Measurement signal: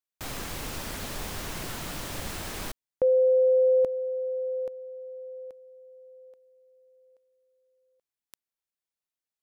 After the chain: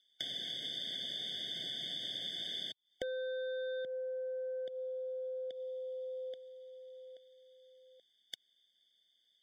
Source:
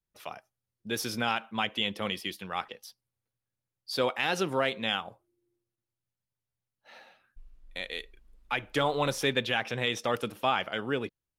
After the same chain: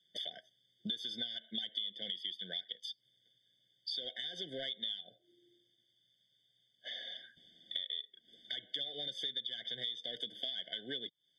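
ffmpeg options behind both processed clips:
ffmpeg -i in.wav -af "highpass=frequency=140:width=0.5412,highpass=frequency=140:width=1.3066,asoftclip=type=tanh:threshold=-22.5dB,lowpass=frequency=3500:width_type=q:width=14,aemphasis=mode=production:type=75fm,acompressor=threshold=-48dB:ratio=10:attack=19:release=148:knee=1:detection=rms,afftfilt=real='re*eq(mod(floor(b*sr/1024/740),2),0)':imag='im*eq(mod(floor(b*sr/1024/740),2),0)':win_size=1024:overlap=0.75,volume=9dB" out.wav

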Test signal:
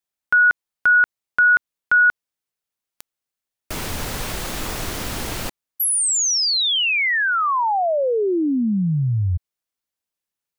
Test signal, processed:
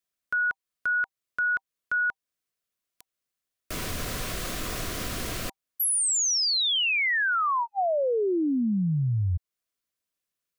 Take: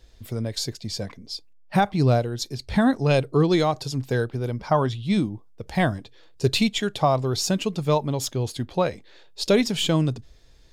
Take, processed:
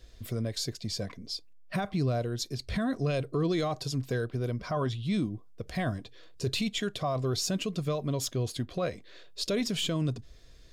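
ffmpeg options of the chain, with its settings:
ffmpeg -i in.wav -af "alimiter=limit=-16.5dB:level=0:latency=1:release=10,acompressor=threshold=-32dB:ratio=1.5:attack=0.15:release=512:detection=peak,asuperstop=centerf=860:order=12:qfactor=5.3" out.wav

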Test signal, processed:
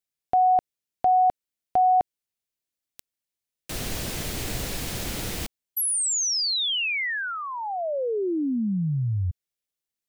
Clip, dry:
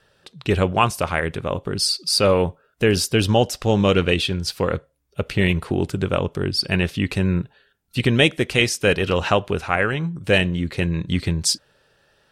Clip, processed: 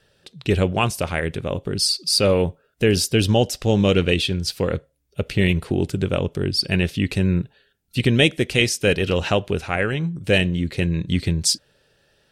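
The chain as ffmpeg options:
ffmpeg -i in.wav -af "equalizer=frequency=1100:width_type=o:width=1.2:gain=-8,volume=1dB" out.wav

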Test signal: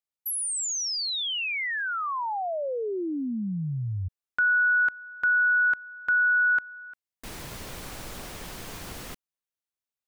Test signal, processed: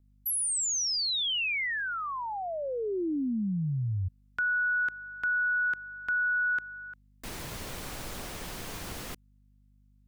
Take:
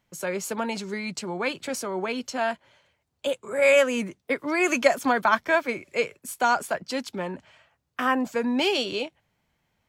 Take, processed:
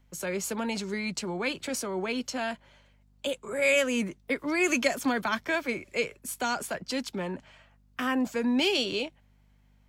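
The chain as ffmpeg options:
ffmpeg -i in.wav -filter_complex "[0:a]aeval=exprs='val(0)+0.000891*(sin(2*PI*50*n/s)+sin(2*PI*2*50*n/s)/2+sin(2*PI*3*50*n/s)/3+sin(2*PI*4*50*n/s)/4+sin(2*PI*5*50*n/s)/5)':channel_layout=same,acrossover=split=400|2000[link_01][link_02][link_03];[link_02]acompressor=threshold=-39dB:ratio=2:attack=1.5:release=61:knee=2.83:detection=peak[link_04];[link_01][link_04][link_03]amix=inputs=3:normalize=0" out.wav

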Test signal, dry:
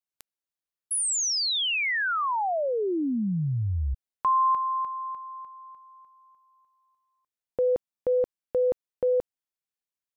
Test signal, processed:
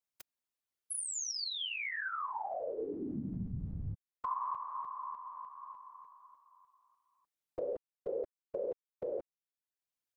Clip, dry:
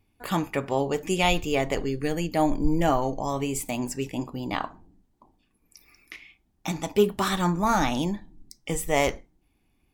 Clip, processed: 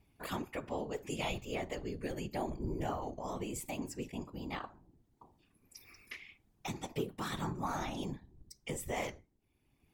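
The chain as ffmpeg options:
ffmpeg -i in.wav -af "afftfilt=real='hypot(re,im)*cos(2*PI*random(0))':imag='hypot(re,im)*sin(2*PI*random(1))':win_size=512:overlap=0.75,acompressor=threshold=-49dB:ratio=2:attack=14:release=581:detection=rms,volume=5dB" out.wav

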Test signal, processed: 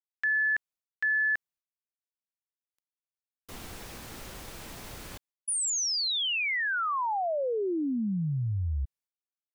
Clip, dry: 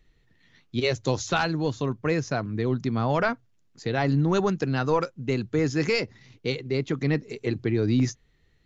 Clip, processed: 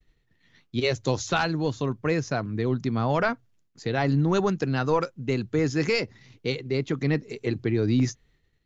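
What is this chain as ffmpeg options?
ffmpeg -i in.wav -af "agate=range=-33dB:threshold=-57dB:ratio=3:detection=peak" out.wav

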